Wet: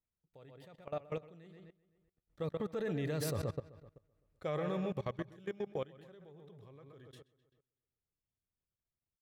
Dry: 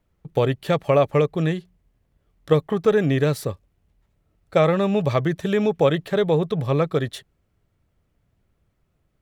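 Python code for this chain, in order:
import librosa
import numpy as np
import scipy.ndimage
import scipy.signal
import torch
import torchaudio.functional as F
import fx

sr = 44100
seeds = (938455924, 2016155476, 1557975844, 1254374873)

y = fx.doppler_pass(x, sr, speed_mps=14, closest_m=2.2, pass_at_s=3.45)
y = fx.echo_filtered(y, sr, ms=128, feedback_pct=46, hz=5000.0, wet_db=-9)
y = fx.level_steps(y, sr, step_db=20)
y = F.gain(torch.from_numpy(y), 4.5).numpy()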